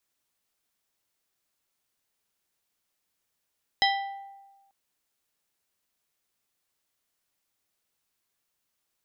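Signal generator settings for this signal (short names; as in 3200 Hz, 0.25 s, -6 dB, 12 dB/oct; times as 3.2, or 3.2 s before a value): glass hit plate, lowest mode 790 Hz, modes 5, decay 1.26 s, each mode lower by 1 dB, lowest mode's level -21.5 dB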